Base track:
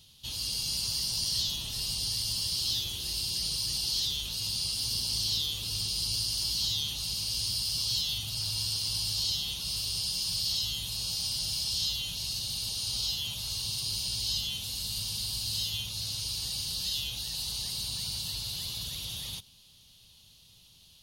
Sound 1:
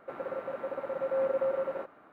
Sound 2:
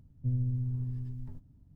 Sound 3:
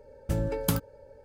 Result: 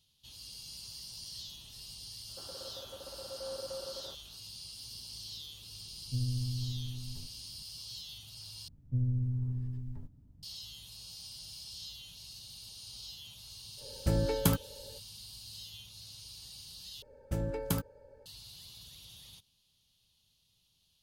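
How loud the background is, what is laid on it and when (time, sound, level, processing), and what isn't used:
base track -15 dB
2.29 s: add 1 -13 dB + steep low-pass 1.7 kHz
5.88 s: add 2 -3 dB
8.68 s: replace with 2 -0.5 dB
13.77 s: add 3 -0.5 dB, fades 0.05 s
17.02 s: replace with 3 -5.5 dB

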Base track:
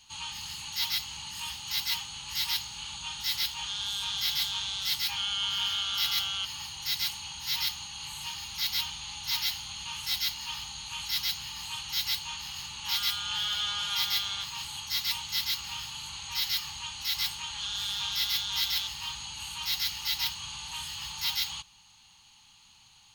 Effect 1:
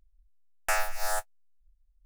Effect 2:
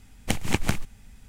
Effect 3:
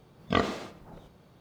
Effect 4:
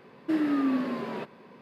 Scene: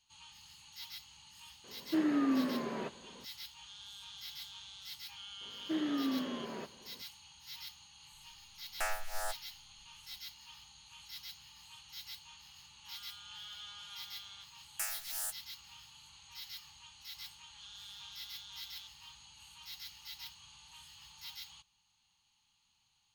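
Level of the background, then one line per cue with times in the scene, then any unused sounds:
base track -17.5 dB
1.64 s: add 4 -4.5 dB
5.41 s: add 4 -8.5 dB
8.12 s: add 1 -8.5 dB
14.11 s: add 1 -3.5 dB + pre-emphasis filter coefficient 0.97
not used: 2, 3

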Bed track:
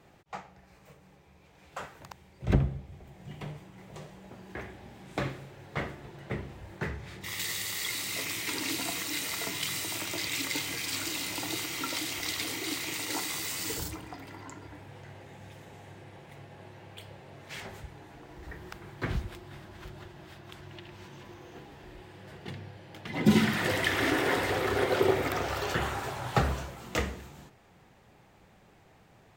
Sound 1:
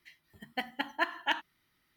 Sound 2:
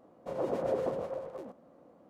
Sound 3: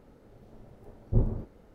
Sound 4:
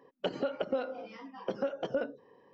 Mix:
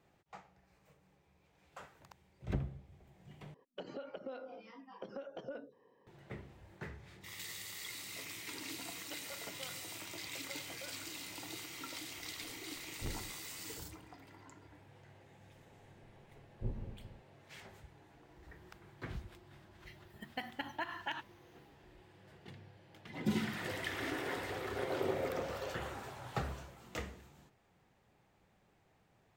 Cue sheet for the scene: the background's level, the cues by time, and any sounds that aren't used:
bed track -12 dB
3.54 s: replace with 4 -7.5 dB + compression 2:1, threshold -36 dBFS
8.87 s: add 4 -12 dB + high-pass 900 Hz
11.89 s: add 3 -17.5 dB + crackling interface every 0.17 s repeat
15.49 s: add 3 -15 dB + backward echo that repeats 114 ms, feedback 60%, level -7.5 dB
19.80 s: add 1 -0.5 dB, fades 0.10 s + compression, threshold -34 dBFS
24.51 s: add 2 -8 dB

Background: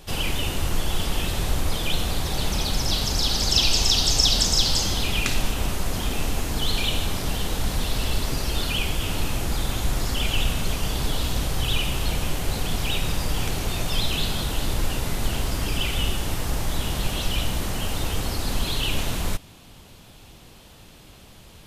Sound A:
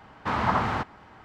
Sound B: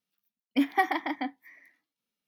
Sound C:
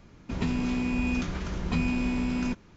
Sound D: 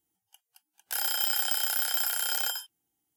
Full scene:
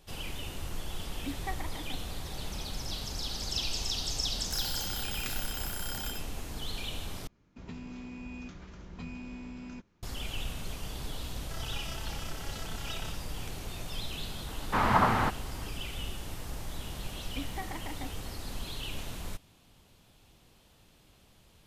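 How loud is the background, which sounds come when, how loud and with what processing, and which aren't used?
background -13.5 dB
0.69 s: add B -14 dB
3.60 s: add D -9 dB + slew-rate limiter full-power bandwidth 420 Hz
7.27 s: replace with C -15 dB
10.58 s: add D -11.5 dB + vocoder on a broken chord major triad, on A3, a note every 115 ms
14.47 s: add A
16.80 s: add B -9 dB + compression 2.5:1, threshold -29 dBFS

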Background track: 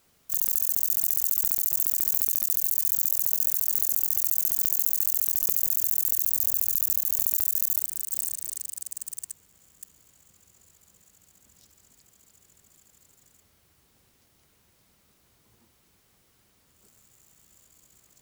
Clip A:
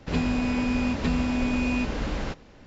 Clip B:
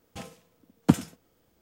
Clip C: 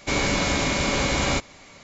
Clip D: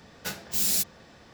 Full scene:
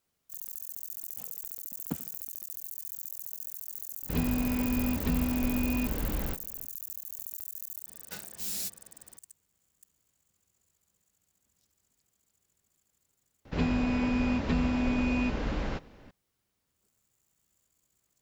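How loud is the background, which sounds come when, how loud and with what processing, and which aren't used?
background track -15.5 dB
1.02 s: add B -16.5 dB
4.02 s: add A -7.5 dB, fades 0.05 s + bass shelf 330 Hz +5.5 dB
7.86 s: add D -10 dB, fades 0.02 s
13.45 s: add A -2.5 dB + low-pass 3.9 kHz 6 dB/octave
not used: C

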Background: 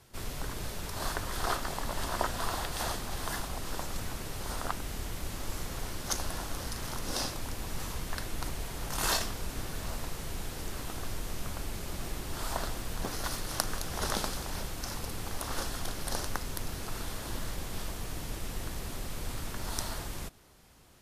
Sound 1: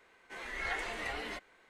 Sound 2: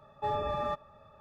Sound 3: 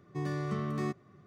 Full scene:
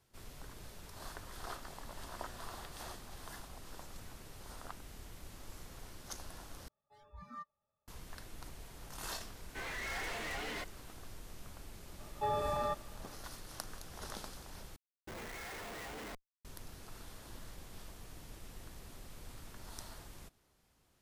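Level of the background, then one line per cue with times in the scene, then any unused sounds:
background -13.5 dB
2.03 s: add 3 -16.5 dB + high-pass 1.2 kHz 6 dB/octave
6.68 s: replace with 2 -6.5 dB + spectral noise reduction 26 dB
9.25 s: add 1 -13.5 dB + waveshaping leveller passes 5
11.99 s: add 2 -2.5 dB
14.76 s: replace with 1 -4.5 dB + Schmitt trigger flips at -42.5 dBFS

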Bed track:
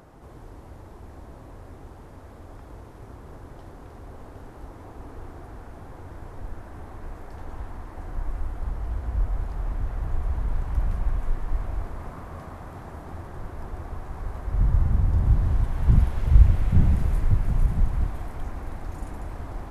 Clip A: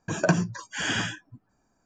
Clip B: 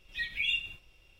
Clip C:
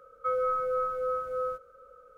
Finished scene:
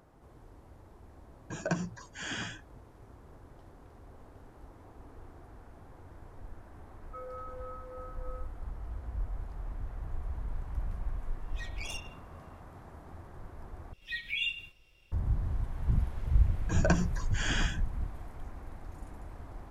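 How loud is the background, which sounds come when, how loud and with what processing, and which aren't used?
bed track -10.5 dB
1.42 s: add A -10 dB
6.89 s: add C -15.5 dB
11.41 s: add B -11.5 dB + tracing distortion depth 0.12 ms
13.93 s: replace with B -2.5 dB
16.61 s: add A -5.5 dB

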